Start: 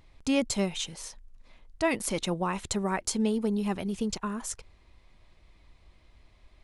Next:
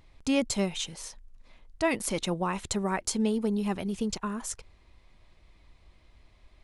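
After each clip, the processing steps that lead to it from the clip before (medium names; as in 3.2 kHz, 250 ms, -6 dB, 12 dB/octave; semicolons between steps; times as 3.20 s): no audible change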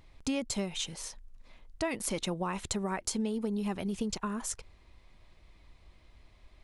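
compression 6:1, threshold -29 dBFS, peak gain reduction 8.5 dB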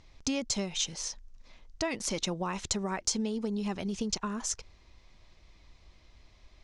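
resonant low-pass 6 kHz, resonance Q 2.7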